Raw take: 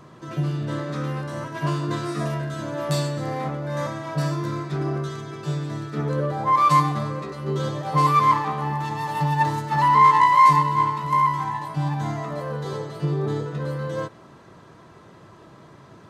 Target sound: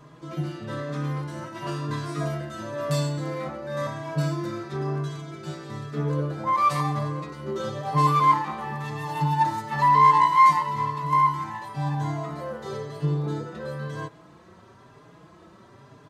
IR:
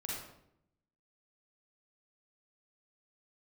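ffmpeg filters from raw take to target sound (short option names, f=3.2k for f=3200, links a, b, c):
-filter_complex "[0:a]asplit=2[a][b];[b]adelay=4.5,afreqshift=1[c];[a][c]amix=inputs=2:normalize=1"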